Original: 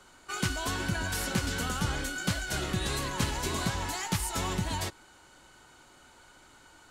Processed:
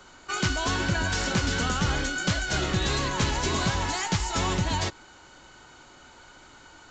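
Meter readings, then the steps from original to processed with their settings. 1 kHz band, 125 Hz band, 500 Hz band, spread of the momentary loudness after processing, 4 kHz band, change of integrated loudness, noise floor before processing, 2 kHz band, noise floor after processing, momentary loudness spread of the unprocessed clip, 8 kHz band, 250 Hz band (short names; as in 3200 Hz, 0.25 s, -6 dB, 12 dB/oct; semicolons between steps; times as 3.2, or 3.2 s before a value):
+5.5 dB, +5.0 dB, +5.5 dB, 2 LU, +5.5 dB, +5.0 dB, -57 dBFS, +5.5 dB, -52 dBFS, 3 LU, +3.0 dB, +4.5 dB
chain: in parallel at -6.5 dB: wrapped overs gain 22 dB; on the sum: downsampling 16000 Hz; gain +2.5 dB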